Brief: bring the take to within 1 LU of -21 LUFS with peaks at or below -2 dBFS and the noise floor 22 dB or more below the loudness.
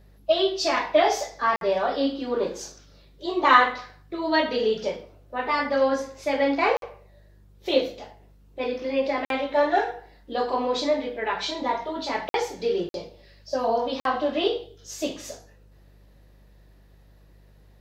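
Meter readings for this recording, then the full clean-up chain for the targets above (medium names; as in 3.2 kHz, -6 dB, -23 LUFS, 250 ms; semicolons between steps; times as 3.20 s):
dropouts 6; longest dropout 52 ms; hum 50 Hz; highest harmonic 200 Hz; hum level -52 dBFS; loudness -25.0 LUFS; peak level -3.0 dBFS; loudness target -21.0 LUFS
-> interpolate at 1.56/6.77/9.25/12.29/12.89/14.00 s, 52 ms; de-hum 50 Hz, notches 4; trim +4 dB; peak limiter -2 dBFS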